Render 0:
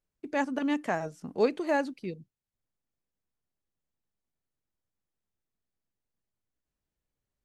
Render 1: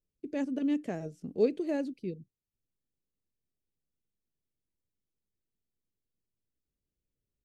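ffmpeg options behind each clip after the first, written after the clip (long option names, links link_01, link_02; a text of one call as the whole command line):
ffmpeg -i in.wav -af "firequalizer=gain_entry='entry(430,0);entry(920,-19);entry(2600,-8)':delay=0.05:min_phase=1" out.wav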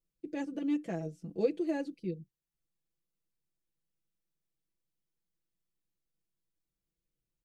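ffmpeg -i in.wav -af "aecho=1:1:6:0.92,volume=-4dB" out.wav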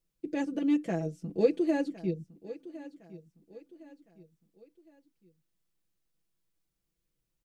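ffmpeg -i in.wav -af "aecho=1:1:1060|2120|3180:0.141|0.0565|0.0226,volume=5dB" out.wav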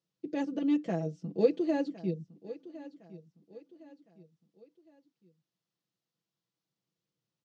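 ffmpeg -i in.wav -af "highpass=frequency=110:width=0.5412,highpass=frequency=110:width=1.3066,equalizer=frequency=340:width_type=q:width=4:gain=-3,equalizer=frequency=1600:width_type=q:width=4:gain=-4,equalizer=frequency=2300:width_type=q:width=4:gain=-5,lowpass=frequency=6000:width=0.5412,lowpass=frequency=6000:width=1.3066" out.wav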